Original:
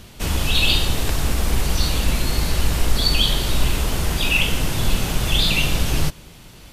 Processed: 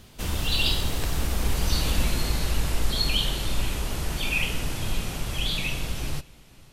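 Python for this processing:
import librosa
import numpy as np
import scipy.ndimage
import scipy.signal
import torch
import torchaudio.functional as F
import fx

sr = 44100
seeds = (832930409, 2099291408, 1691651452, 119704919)

y = fx.doppler_pass(x, sr, speed_mps=20, closest_m=17.0, pass_at_s=2.01)
y = y + 10.0 ** (-24.0 / 20.0) * np.pad(y, (int(497 * sr / 1000.0), 0))[:len(y)]
y = fx.rider(y, sr, range_db=5, speed_s=2.0)
y = F.gain(torch.from_numpy(y), -2.0).numpy()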